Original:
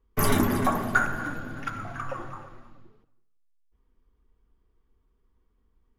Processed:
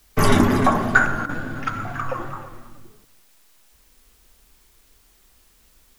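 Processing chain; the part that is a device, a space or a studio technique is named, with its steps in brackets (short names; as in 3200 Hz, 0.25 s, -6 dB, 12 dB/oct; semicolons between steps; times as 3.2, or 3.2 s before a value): worn cassette (LPF 7600 Hz 12 dB/oct; wow and flutter; level dips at 1.26, 30 ms -10 dB; white noise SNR 35 dB); gain +7 dB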